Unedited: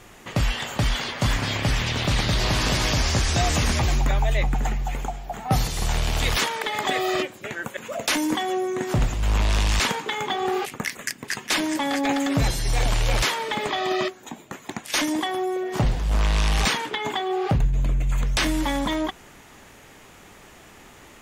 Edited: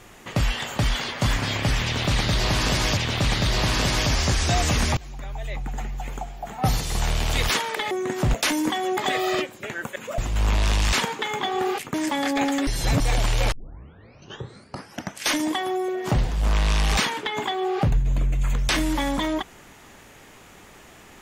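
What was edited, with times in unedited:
0:01.84–0:02.97: repeat, 2 plays
0:03.84–0:05.64: fade in, from −22 dB
0:06.78–0:07.99: swap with 0:08.62–0:09.05
0:10.81–0:11.62: remove
0:12.35–0:12.68: reverse
0:13.20: tape start 1.79 s

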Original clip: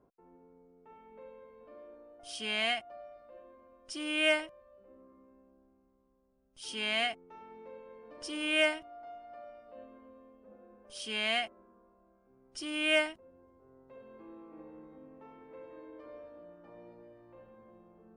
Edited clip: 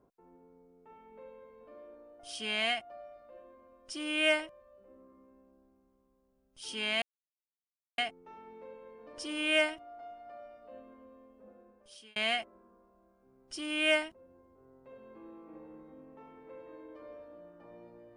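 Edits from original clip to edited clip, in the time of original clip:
0:07.02: splice in silence 0.96 s
0:10.53–0:11.20: fade out

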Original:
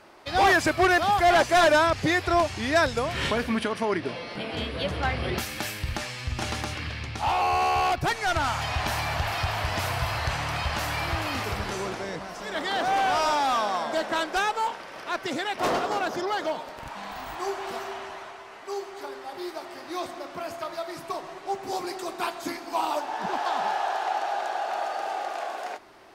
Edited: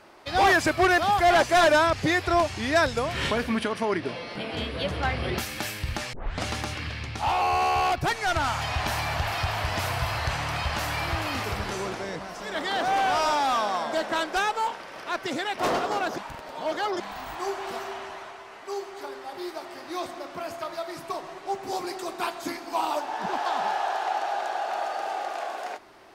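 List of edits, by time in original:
0:06.13: tape start 0.33 s
0:16.18–0:17.00: reverse

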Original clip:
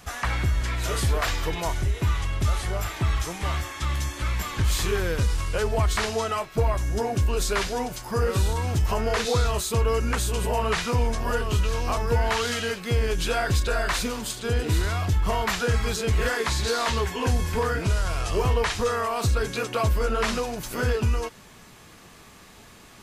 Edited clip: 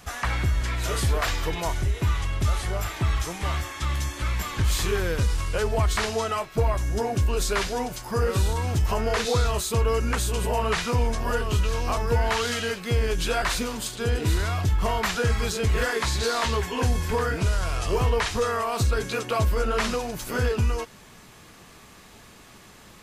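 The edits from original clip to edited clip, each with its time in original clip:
0:13.42–0:13.86: remove

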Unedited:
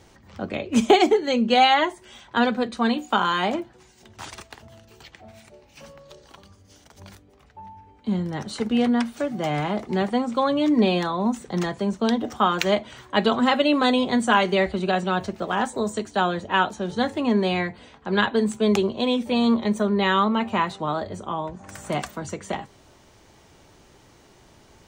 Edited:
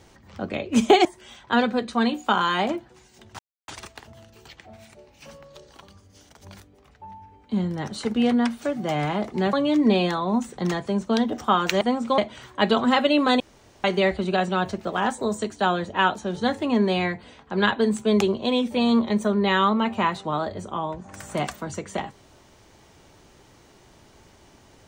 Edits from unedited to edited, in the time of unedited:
0:01.05–0:01.89: remove
0:04.23: splice in silence 0.29 s
0:10.08–0:10.45: move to 0:12.73
0:13.95–0:14.39: fill with room tone

